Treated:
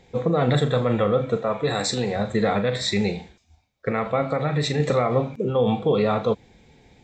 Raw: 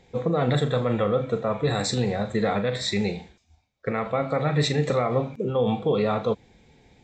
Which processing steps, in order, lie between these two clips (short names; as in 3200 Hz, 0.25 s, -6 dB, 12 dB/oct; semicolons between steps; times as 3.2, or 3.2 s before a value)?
1.37–2.16 low shelf 160 Hz -10 dB; 4.31–4.8 compressor, threshold -22 dBFS, peak gain reduction 5 dB; gain +2.5 dB